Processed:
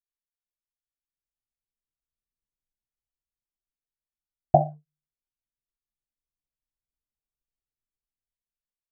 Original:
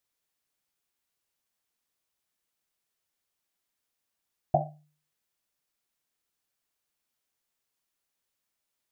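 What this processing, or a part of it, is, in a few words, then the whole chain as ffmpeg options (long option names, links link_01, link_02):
voice memo with heavy noise removal: -af "anlmdn=0.00158,dynaudnorm=framelen=580:gausssize=5:maxgain=15.5dB,volume=-1dB"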